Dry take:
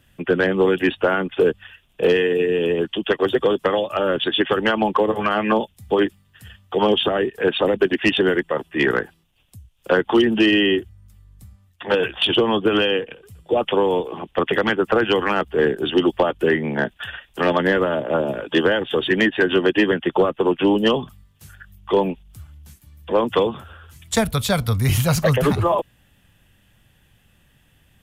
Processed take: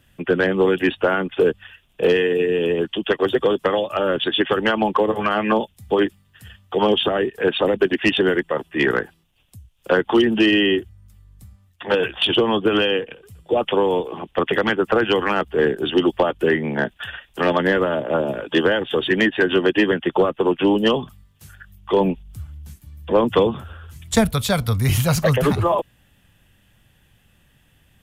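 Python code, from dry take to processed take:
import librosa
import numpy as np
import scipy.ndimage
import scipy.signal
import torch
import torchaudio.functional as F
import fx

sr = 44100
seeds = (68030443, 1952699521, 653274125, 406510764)

y = fx.low_shelf(x, sr, hz=290.0, db=7.0, at=(22.0, 24.27))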